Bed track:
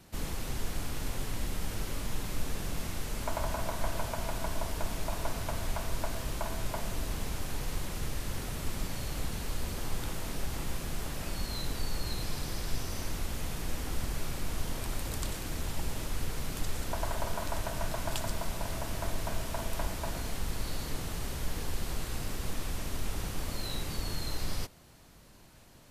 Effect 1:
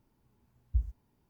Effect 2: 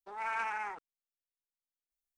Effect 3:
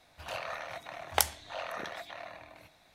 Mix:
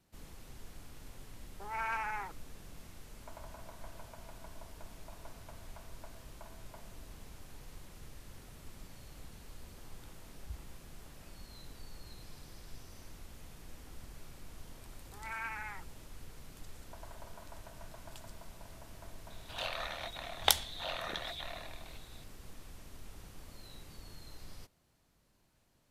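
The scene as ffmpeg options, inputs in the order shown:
ffmpeg -i bed.wav -i cue0.wav -i cue1.wav -i cue2.wav -filter_complex "[2:a]asplit=2[link_01][link_02];[0:a]volume=-16dB[link_03];[link_01]lowpass=8600[link_04];[link_02]equalizer=frequency=2000:width_type=o:width=1.4:gain=10.5[link_05];[3:a]equalizer=frequency=3600:width=2.8:gain=12.5[link_06];[link_04]atrim=end=2.17,asetpts=PTS-STARTPTS,volume=-1dB,afade=type=in:duration=0.004:curve=hsin,afade=type=out:start_time=2.166:duration=0.004:curve=hsin,adelay=1530[link_07];[1:a]atrim=end=1.29,asetpts=PTS-STARTPTS,volume=-15.5dB,afade=type=in:duration=0.004:curve=hsin,afade=type=out:start_time=1.286:duration=0.004:curve=hsin,adelay=9750[link_08];[link_05]atrim=end=2.17,asetpts=PTS-STARTPTS,volume=-12dB,afade=type=in:duration=0.004:curve=hsin,afade=type=out:start_time=2.166:duration=0.004:curve=hsin,adelay=15050[link_09];[link_06]atrim=end=2.94,asetpts=PTS-STARTPTS,volume=-2.5dB,afade=type=in:duration=0.004:curve=hsin,afade=type=out:start_time=2.936:duration=0.004:curve=hsin,adelay=19300[link_10];[link_03][link_07][link_08][link_09][link_10]amix=inputs=5:normalize=0" out.wav

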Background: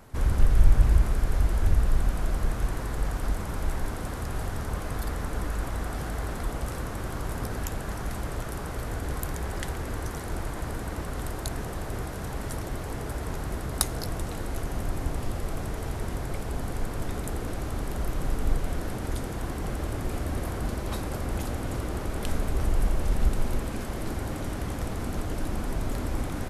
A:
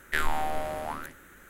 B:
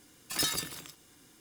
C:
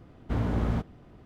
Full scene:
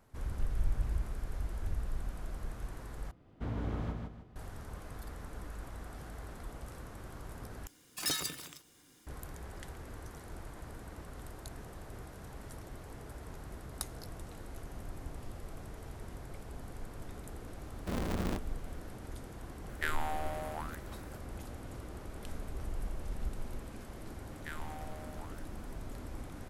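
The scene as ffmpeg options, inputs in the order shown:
ffmpeg -i bed.wav -i cue0.wav -i cue1.wav -i cue2.wav -filter_complex "[3:a]asplit=2[link_01][link_02];[1:a]asplit=2[link_03][link_04];[0:a]volume=-14dB[link_05];[link_01]aecho=1:1:153|306|459|612:0.631|0.202|0.0646|0.0207[link_06];[link_02]aeval=exprs='val(0)*sgn(sin(2*PI*130*n/s))':channel_layout=same[link_07];[link_05]asplit=3[link_08][link_09][link_10];[link_08]atrim=end=3.114[link_11];[link_06]atrim=end=1.25,asetpts=PTS-STARTPTS,volume=-9.5dB[link_12];[link_09]atrim=start=4.356:end=7.674[link_13];[2:a]atrim=end=1.4,asetpts=PTS-STARTPTS,volume=-3.5dB[link_14];[link_10]atrim=start=9.066[link_15];[link_07]atrim=end=1.25,asetpts=PTS-STARTPTS,volume=-8dB,afade=type=in:duration=0.004:curve=hsin,afade=type=out:start_time=1.246:duration=0.004:curve=hsin,adelay=17570[link_16];[link_03]atrim=end=1.49,asetpts=PTS-STARTPTS,volume=-7dB,afade=type=in:duration=0.004:curve=hsin,afade=type=out:start_time=1.486:duration=0.004:curve=hsin,adelay=19690[link_17];[link_04]atrim=end=1.49,asetpts=PTS-STARTPTS,volume=-17dB,afade=type=in:duration=0.004:curve=hsin,afade=type=out:start_time=1.486:duration=0.004:curve=hsin,adelay=24330[link_18];[link_11][link_12]acrossfade=duration=0.004:curve1=hsin:curve2=hsin[link_19];[link_19][link_13]acrossfade=duration=0.004:curve1=hsin:curve2=hsin[link_20];[link_20][link_14]acrossfade=duration=0.004:curve1=hsin:curve2=hsin[link_21];[link_21][link_15]acrossfade=duration=0.004:curve1=hsin:curve2=hsin[link_22];[link_22][link_16][link_17][link_18]amix=inputs=4:normalize=0" out.wav

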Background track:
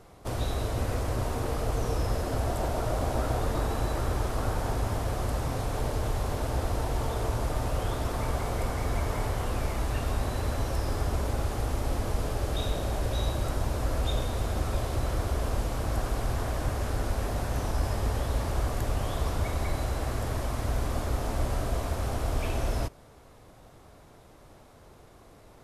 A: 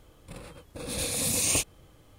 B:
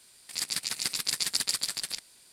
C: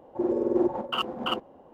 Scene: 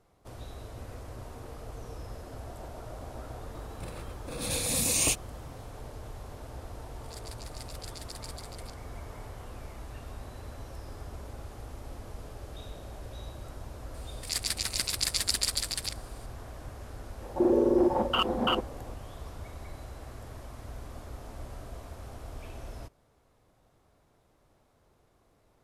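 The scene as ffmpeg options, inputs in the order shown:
ffmpeg -i bed.wav -i cue0.wav -i cue1.wav -i cue2.wav -filter_complex "[2:a]asplit=2[link_01][link_02];[0:a]volume=-13.5dB[link_03];[3:a]alimiter=level_in=20dB:limit=-1dB:release=50:level=0:latency=1[link_04];[1:a]atrim=end=2.18,asetpts=PTS-STARTPTS,volume=-0.5dB,afade=type=in:duration=0.004:curve=hsin,afade=type=out:start_time=2.176:duration=0.004:curve=hsin,adelay=3520[link_05];[link_01]atrim=end=2.32,asetpts=PTS-STARTPTS,volume=-17dB,afade=type=in:duration=0.004:curve=hsin,afade=type=out:start_time=2.316:duration=0.004:curve=hsin,adelay=6750[link_06];[link_02]atrim=end=2.32,asetpts=PTS-STARTPTS,afade=type=in:duration=0.004:curve=hsin,afade=type=out:start_time=2.316:duration=0.004:curve=hsin,adelay=13940[link_07];[link_04]atrim=end=1.73,asetpts=PTS-STARTPTS,volume=-14.5dB,afade=type=in:duration=0.004:curve=hsin,afade=type=out:start_time=1.726:duration=0.004:curve=hsin,adelay=17210[link_08];[link_03][link_05][link_06][link_07][link_08]amix=inputs=5:normalize=0" out.wav

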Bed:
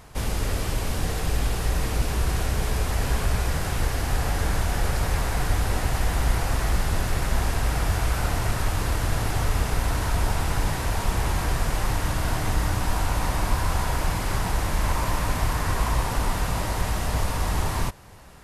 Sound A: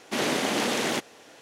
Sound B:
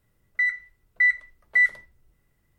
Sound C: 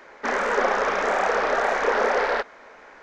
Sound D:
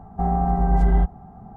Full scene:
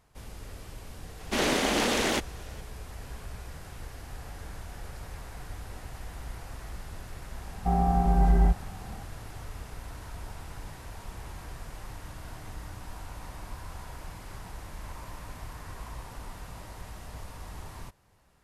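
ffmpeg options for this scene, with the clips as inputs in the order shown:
ffmpeg -i bed.wav -i cue0.wav -i cue1.wav -i cue2.wav -i cue3.wav -filter_complex "[0:a]volume=-17.5dB[link_01];[1:a]atrim=end=1.41,asetpts=PTS-STARTPTS,afade=type=in:duration=0.004:curve=hsin,afade=type=out:start_time=1.406:duration=0.004:curve=hsin,adelay=1200[link_02];[4:a]atrim=end=1.56,asetpts=PTS-STARTPTS,volume=-3.5dB,afade=type=in:duration=0.004:curve=hsin,afade=type=out:start_time=1.556:duration=0.004:curve=hsin,adelay=7470[link_03];[link_01][link_02][link_03]amix=inputs=3:normalize=0" out.wav

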